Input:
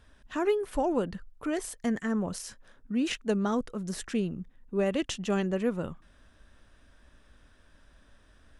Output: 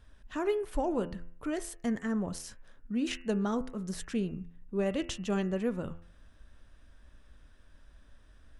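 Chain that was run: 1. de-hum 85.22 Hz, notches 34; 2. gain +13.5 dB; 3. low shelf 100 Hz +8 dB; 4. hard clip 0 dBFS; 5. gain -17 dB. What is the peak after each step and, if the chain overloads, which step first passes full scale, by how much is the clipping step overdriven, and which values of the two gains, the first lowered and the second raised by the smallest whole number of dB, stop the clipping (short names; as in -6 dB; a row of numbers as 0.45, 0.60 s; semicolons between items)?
-16.5, -3.0, -2.0, -2.0, -19.0 dBFS; no overload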